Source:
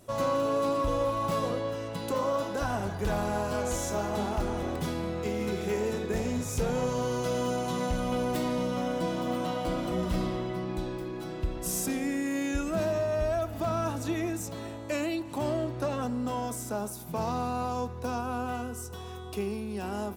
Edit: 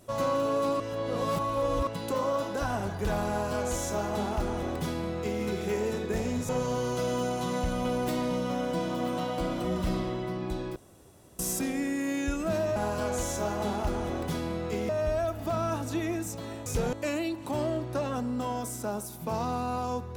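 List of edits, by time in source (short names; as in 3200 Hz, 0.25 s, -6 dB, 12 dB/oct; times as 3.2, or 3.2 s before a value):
0.8–1.87 reverse
3.29–5.42 copy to 13.03
6.49–6.76 move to 14.8
11.03–11.66 room tone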